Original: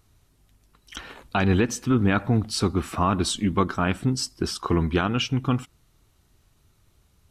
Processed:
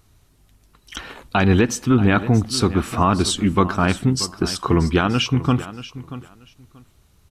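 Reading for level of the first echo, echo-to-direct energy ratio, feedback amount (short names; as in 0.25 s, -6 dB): -15.0 dB, -15.0 dB, 19%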